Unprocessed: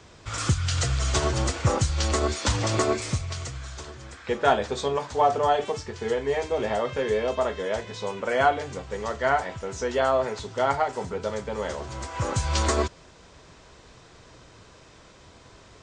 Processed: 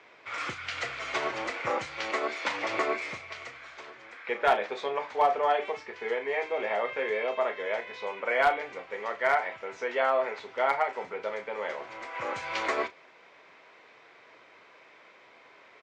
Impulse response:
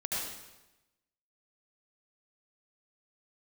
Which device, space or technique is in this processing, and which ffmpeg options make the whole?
megaphone: -filter_complex "[0:a]highpass=460,lowpass=2800,equalizer=frequency=2200:width_type=o:width=0.4:gain=10.5,asoftclip=type=hard:threshold=-12.5dB,asplit=2[link_01][link_02];[link_02]adelay=34,volume=-12dB[link_03];[link_01][link_03]amix=inputs=2:normalize=0,asettb=1/sr,asplit=3[link_04][link_05][link_06];[link_04]atrim=end=2.104[link_07];[link_05]atrim=start=2.1:end=2.69,asetpts=PTS-STARTPTS,afade=type=in:duration=0.004:curve=qsin,afade=type=out:start_time=0.586:duration=0.004:curve=qsin,highpass=150[link_08];[link_06]atrim=start=2.686[link_09];[link_07][link_08]acrossfade=duration=0.004:curve1=hsin:curve2=qsin[link_10];[link_10][link_09]acrossfade=duration=0.004:curve1=qsin:curve2=hsin,volume=-2.5dB"

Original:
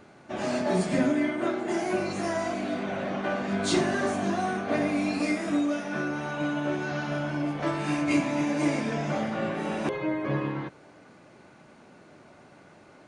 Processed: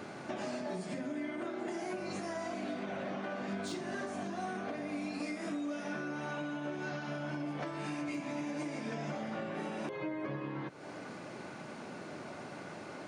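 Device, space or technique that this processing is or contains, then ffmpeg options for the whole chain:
broadcast voice chain: -af "highpass=110,deesser=0.7,acompressor=threshold=-44dB:ratio=4,equalizer=frequency=5100:width_type=o:width=0.27:gain=2.5,alimiter=level_in=13dB:limit=-24dB:level=0:latency=1:release=269,volume=-13dB,volume=7.5dB"

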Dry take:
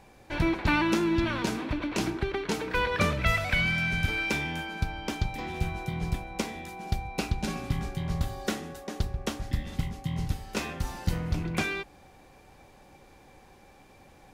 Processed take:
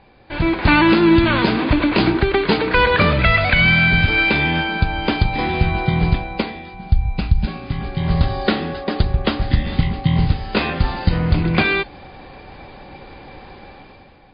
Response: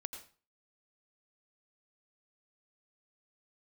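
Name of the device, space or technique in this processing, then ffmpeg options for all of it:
low-bitrate web radio: -filter_complex "[0:a]asplit=3[link_01][link_02][link_03];[link_01]afade=type=out:start_time=6.73:duration=0.02[link_04];[link_02]asubboost=boost=9.5:cutoff=120,afade=type=in:start_time=6.73:duration=0.02,afade=type=out:start_time=7.45:duration=0.02[link_05];[link_03]afade=type=in:start_time=7.45:duration=0.02[link_06];[link_04][link_05][link_06]amix=inputs=3:normalize=0,dynaudnorm=framelen=110:gausssize=11:maxgain=12dB,alimiter=limit=-7.5dB:level=0:latency=1:release=151,volume=4.5dB" -ar 11025 -c:a libmp3lame -b:a 24k

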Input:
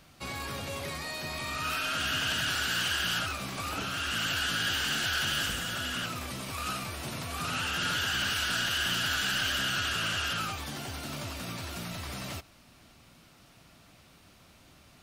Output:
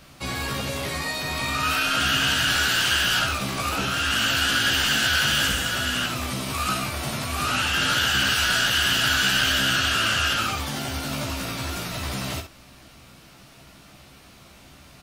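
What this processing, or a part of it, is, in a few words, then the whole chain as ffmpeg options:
slapback doubling: -filter_complex "[0:a]asplit=3[link_01][link_02][link_03];[link_02]adelay=15,volume=-3.5dB[link_04];[link_03]adelay=64,volume=-7.5dB[link_05];[link_01][link_04][link_05]amix=inputs=3:normalize=0,volume=6.5dB"

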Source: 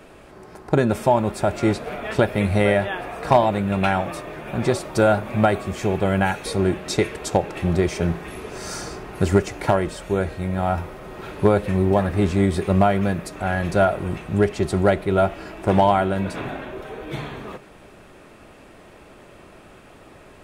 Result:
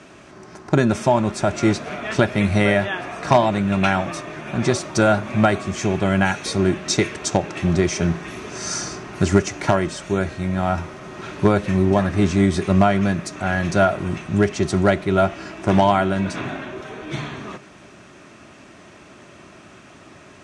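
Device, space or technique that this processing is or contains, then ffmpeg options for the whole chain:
car door speaker: -af "highpass=96,equalizer=frequency=480:width_type=q:width=4:gain=-10,equalizer=frequency=820:width_type=q:width=4:gain=-5,equalizer=frequency=6000:width_type=q:width=4:gain=8,lowpass=frequency=8800:width=0.5412,lowpass=frequency=8800:width=1.3066,volume=3.5dB"

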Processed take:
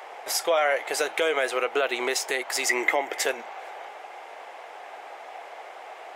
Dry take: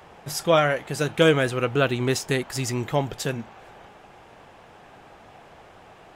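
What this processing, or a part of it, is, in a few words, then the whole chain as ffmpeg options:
laptop speaker: -filter_complex "[0:a]highpass=frequency=430:width=0.5412,highpass=frequency=430:width=1.3066,equalizer=frequency=740:width_type=o:width=0.58:gain=5,equalizer=frequency=2100:width_type=o:width=0.25:gain=7.5,alimiter=limit=-19dB:level=0:latency=1:release=167,asettb=1/sr,asplit=3[link_01][link_02][link_03];[link_01]atrim=end=2.694[link_04];[link_02]atrim=start=2.69:end=3.26,asetpts=PTS-STARTPTS,afade=type=in:duration=0.004:curve=qsin,afade=type=out:start_time=0.566:duration=0.004:curve=qsin,equalizer=frequency=315:width_type=o:width=0.33:gain=9,equalizer=frequency=2000:width_type=o:width=0.33:gain=11,equalizer=frequency=4000:width_type=o:width=0.33:gain=-6[link_05];[link_03]atrim=start=3.256[link_06];[link_04][link_05]acrossfade=duration=0.004:curve1=hsin:curve2=qsin[link_07];[link_07][link_06]acrossfade=duration=0.004:curve1=qsin:curve2=hsin,volume=5dB"

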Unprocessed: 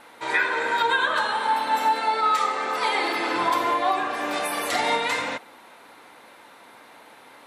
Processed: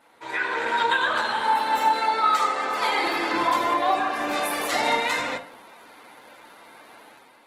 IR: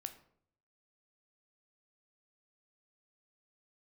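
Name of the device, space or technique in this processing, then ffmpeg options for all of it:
far-field microphone of a smart speaker: -filter_complex "[1:a]atrim=start_sample=2205[link_01];[0:a][link_01]afir=irnorm=-1:irlink=0,highpass=87,dynaudnorm=framelen=170:gausssize=5:maxgain=8.5dB,volume=-4.5dB" -ar 48000 -c:a libopus -b:a 16k

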